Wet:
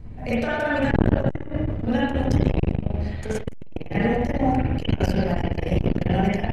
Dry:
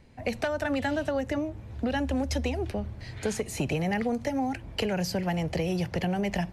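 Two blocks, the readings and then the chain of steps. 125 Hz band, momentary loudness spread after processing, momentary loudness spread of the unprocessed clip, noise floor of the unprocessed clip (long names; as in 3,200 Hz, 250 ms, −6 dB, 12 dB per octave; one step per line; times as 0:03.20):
+9.5 dB, 7 LU, 5 LU, −44 dBFS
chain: wind on the microphone 120 Hz −26 dBFS
spring reverb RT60 1.2 s, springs 39/48/52 ms, chirp 75 ms, DRR −9 dB
saturating transformer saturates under 340 Hz
level −2.5 dB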